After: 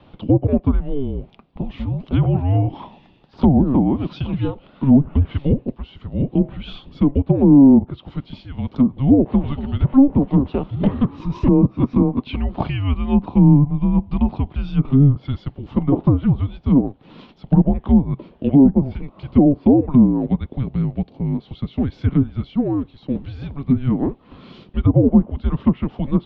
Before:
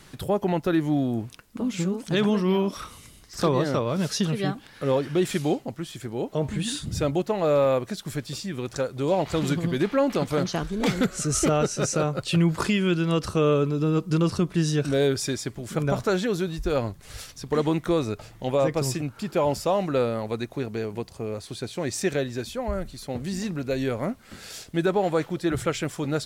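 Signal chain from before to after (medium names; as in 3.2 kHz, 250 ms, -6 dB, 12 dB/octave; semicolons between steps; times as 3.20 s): ten-band graphic EQ 125 Hz -4 dB, 500 Hz +11 dB, 1 kHz +4 dB, 2 kHz -12 dB; mistuned SSB -280 Hz 300–3600 Hz; low-pass that closes with the level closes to 770 Hz, closed at -12 dBFS; trim +2.5 dB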